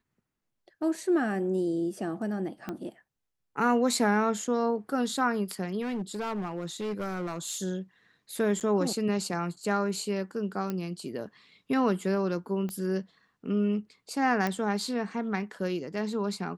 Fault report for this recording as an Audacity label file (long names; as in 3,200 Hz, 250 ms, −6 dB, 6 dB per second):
2.690000	2.690000	click −21 dBFS
5.810000	7.570000	clipping −28.5 dBFS
8.600000	8.610000	drop-out 8.5 ms
10.700000	10.700000	click −19 dBFS
12.690000	12.690000	click −24 dBFS
14.470000	14.470000	click −16 dBFS